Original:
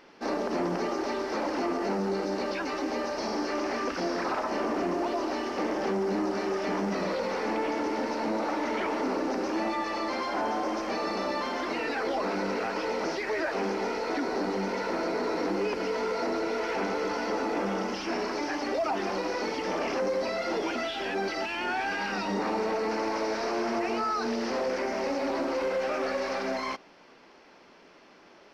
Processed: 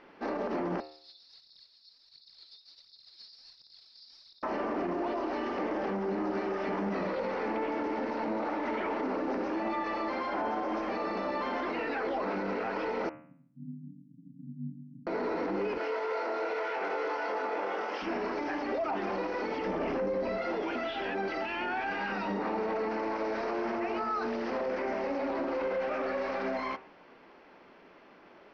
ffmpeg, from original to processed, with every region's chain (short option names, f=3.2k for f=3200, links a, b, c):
-filter_complex "[0:a]asettb=1/sr,asplit=3[a][b][c];[a]atrim=end=0.804[d];[b]atrim=start=0.8:end=4.43,asetpts=PTS-STARTPTS,afade=t=in:d=0.004:c=qsin,afade=t=out:st=3.626:d=0.004:c=qsin,asuperpass=centerf=4400:order=20:qfactor=2.4,aphaser=in_gain=1:out_gain=1:delay=4.8:decay=0.61:speed=1.4:type=sinusoidal[e];[c]atrim=start=4.426[f];[d][e]acrossfade=d=0.004:c1=hsin:c2=qsin[g];[g][f]acrossfade=d=0.004:c1=qsin:c2=hsin,asettb=1/sr,asplit=3[h][i][j];[h]atrim=end=13.094[k];[i]atrim=start=13.09:end=15.07,asetpts=PTS-STARTPTS,afade=t=in:d=0.004:c=qsin,afade=t=out:st=1.976:d=0.004:c=qsin,asuperpass=centerf=200:order=12:qfactor=3.2,aeval=exprs='val(0)*sin(2*PI*50*n/s)':c=same[l];[j]atrim=start=15.066[m];[k][l]acrossfade=d=0.004:c1=hsin:c2=qsin[n];[n][m]acrossfade=d=0.004:c1=qsin:c2=hsin,asettb=1/sr,asplit=3[o][p][q];[o]atrim=end=15.784[r];[p]atrim=start=15.78:end=18.02,asetpts=PTS-STARTPTS,afade=t=in:d=0.004:c=qsin,afade=t=out:st=2.236:d=0.004:c=qsin,highpass=490,asplit=2[s][t];[t]adelay=23,volume=-3dB[u];[s][u]amix=inputs=2:normalize=0,atrim=end_sample=98784[v];[q]atrim=start=18.016[w];[r][v]acrossfade=d=0.004:c1=hsin:c2=qsin[x];[x][w]acrossfade=d=0.004:c1=qsin:c2=hsin,asettb=1/sr,asplit=3[y][z][aa];[y]atrim=end=19.664[ab];[z]atrim=start=19.66:end=20.38,asetpts=PTS-STARTPTS,afade=t=in:d=0.004:c=qsin,afade=t=out:st=0.716:d=0.004:c=qsin,lowshelf=f=360:g=9.5,asplit=2[ac][ad];[ad]adelay=36,volume=-13dB[ae];[ac][ae]amix=inputs=2:normalize=0,atrim=end_sample=31752[af];[aa]atrim=start=20.376[ag];[ab][af]acrossfade=d=0.004:c1=hsin:c2=qsin[ah];[ah][ag]acrossfade=d=0.004:c1=qsin:c2=hsin,bandreject=f=76.92:t=h:w=4,bandreject=f=153.84:t=h:w=4,bandreject=f=230.76:t=h:w=4,bandreject=f=307.68:t=h:w=4,bandreject=f=384.6:t=h:w=4,bandreject=f=461.52:t=h:w=4,bandreject=f=538.44:t=h:w=4,bandreject=f=615.36:t=h:w=4,bandreject=f=692.28:t=h:w=4,bandreject=f=769.2:t=h:w=4,bandreject=f=846.12:t=h:w=4,bandreject=f=923.04:t=h:w=4,bandreject=f=999.96:t=h:w=4,bandreject=f=1.07688k:t=h:w=4,bandreject=f=1.1538k:t=h:w=4,bandreject=f=1.23072k:t=h:w=4,bandreject=f=1.30764k:t=h:w=4,bandreject=f=1.38456k:t=h:w=4,bandreject=f=1.46148k:t=h:w=4,bandreject=f=1.5384k:t=h:w=4,bandreject=f=1.61532k:t=h:w=4,bandreject=f=1.69224k:t=h:w=4,bandreject=f=1.76916k:t=h:w=4,bandreject=f=1.84608k:t=h:w=4,bandreject=f=1.923k:t=h:w=4,bandreject=f=1.99992k:t=h:w=4,bandreject=f=2.07684k:t=h:w=4,bandreject=f=2.15376k:t=h:w=4,bandreject=f=2.23068k:t=h:w=4,bandreject=f=2.3076k:t=h:w=4,bandreject=f=2.38452k:t=h:w=4,bandreject=f=2.46144k:t=h:w=4,bandreject=f=2.53836k:t=h:w=4,bandreject=f=2.61528k:t=h:w=4,bandreject=f=2.6922k:t=h:w=4,bandreject=f=2.76912k:t=h:w=4,bandreject=f=2.84604k:t=h:w=4,bandreject=f=2.92296k:t=h:w=4,bandreject=f=2.99988k:t=h:w=4,alimiter=level_in=0.5dB:limit=-24dB:level=0:latency=1,volume=-0.5dB,lowpass=2.7k"